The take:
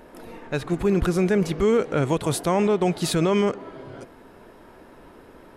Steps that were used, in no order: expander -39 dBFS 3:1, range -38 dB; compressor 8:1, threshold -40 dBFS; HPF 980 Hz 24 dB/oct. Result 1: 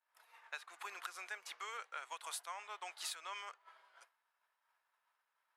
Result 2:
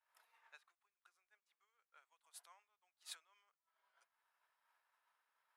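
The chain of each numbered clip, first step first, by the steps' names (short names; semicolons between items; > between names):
HPF > compressor > expander; compressor > HPF > expander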